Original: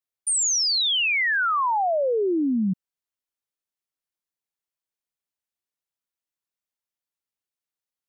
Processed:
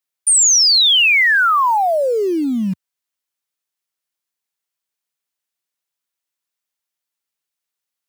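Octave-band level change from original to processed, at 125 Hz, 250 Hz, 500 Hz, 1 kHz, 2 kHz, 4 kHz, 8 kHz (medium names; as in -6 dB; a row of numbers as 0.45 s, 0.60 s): +4.0 dB, +4.0 dB, +5.5 dB, +8.0 dB, +9.5 dB, +10.5 dB, +10.5 dB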